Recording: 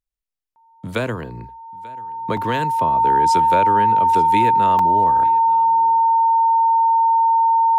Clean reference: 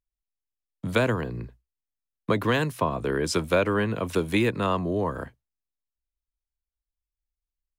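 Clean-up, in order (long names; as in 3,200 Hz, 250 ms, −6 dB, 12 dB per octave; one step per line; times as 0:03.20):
notch filter 910 Hz, Q 30
repair the gap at 0:02.37/0:04.79, 3.1 ms
echo removal 888 ms −22 dB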